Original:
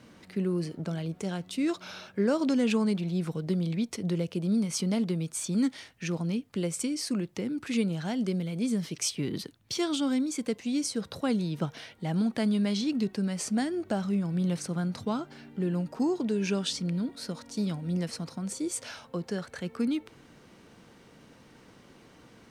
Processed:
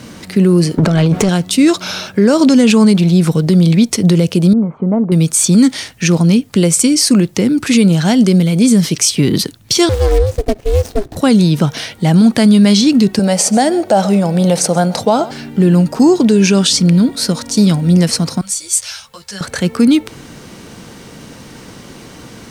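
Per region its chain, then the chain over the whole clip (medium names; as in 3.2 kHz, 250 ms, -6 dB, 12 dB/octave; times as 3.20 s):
0.78–1.29 s: bass shelf 240 Hz +9 dB + compressor with a negative ratio -32 dBFS + overdrive pedal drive 19 dB, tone 1.8 kHz, clips at -20 dBFS
4.53–5.12 s: inverse Chebyshev low-pass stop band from 4.8 kHz, stop band 70 dB + bass shelf 380 Hz -8.5 dB
9.89–11.17 s: median filter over 41 samples + ring modulator 210 Hz
13.19–15.31 s: high-pass 300 Hz 6 dB/octave + high-order bell 640 Hz +10.5 dB 1.1 oct + delay 132 ms -20.5 dB
18.41–19.41 s: amplifier tone stack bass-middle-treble 10-0-10 + three-phase chorus
whole clip: tone controls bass +3 dB, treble +7 dB; loudness maximiser +19.5 dB; trim -1 dB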